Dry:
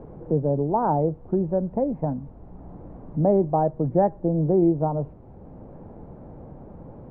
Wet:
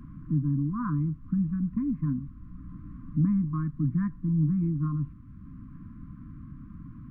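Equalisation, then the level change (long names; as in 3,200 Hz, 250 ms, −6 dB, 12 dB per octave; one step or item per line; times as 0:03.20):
linear-phase brick-wall band-stop 310–1,000 Hz
0.0 dB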